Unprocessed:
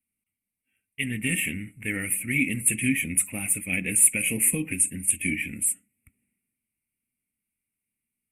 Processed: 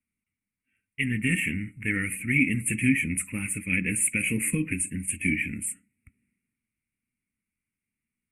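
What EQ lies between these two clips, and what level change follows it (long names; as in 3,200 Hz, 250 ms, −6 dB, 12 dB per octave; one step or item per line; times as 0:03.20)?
high-frequency loss of the air 66 metres
phaser with its sweep stopped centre 1,700 Hz, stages 4
+4.0 dB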